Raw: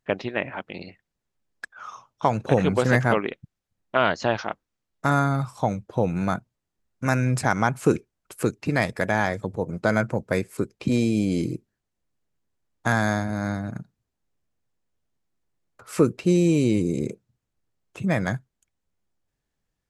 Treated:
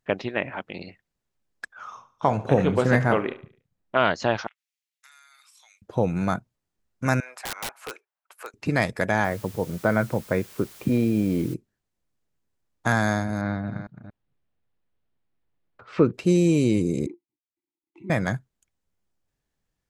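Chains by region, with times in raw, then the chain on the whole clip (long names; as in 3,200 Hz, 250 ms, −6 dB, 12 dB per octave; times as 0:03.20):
0:01.84–0:03.97: high-shelf EQ 2,500 Hz −6 dB + double-tracking delay 29 ms −12 dB + repeating echo 72 ms, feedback 44%, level −17 dB
0:04.47–0:05.82: Chebyshev high-pass filter 2,200 Hz, order 3 + downward compressor 4 to 1, threshold −53 dBFS
0:07.20–0:08.54: high-pass filter 730 Hz 24 dB per octave + parametric band 7,800 Hz −13.5 dB 2.4 octaves + wrap-around overflow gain 25 dB
0:09.24–0:11.54: low-pass filter 2,100 Hz + bit-depth reduction 8 bits, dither triangular
0:13.41–0:16.14: delay that plays each chunk backwards 231 ms, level −11 dB + low-pass filter 3,900 Hz 24 dB per octave
0:17.06–0:18.10: mu-law and A-law mismatch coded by A + formant filter u + hollow resonant body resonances 350/2,000/4,000 Hz, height 16 dB, ringing for 85 ms
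whole clip: no processing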